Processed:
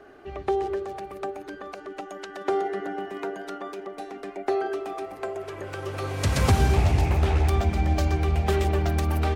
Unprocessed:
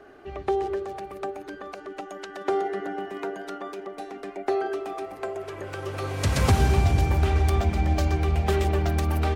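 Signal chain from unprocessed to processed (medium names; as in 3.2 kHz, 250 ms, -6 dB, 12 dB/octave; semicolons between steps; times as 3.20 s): 6.75–7.49 s: loudspeaker Doppler distortion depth 0.55 ms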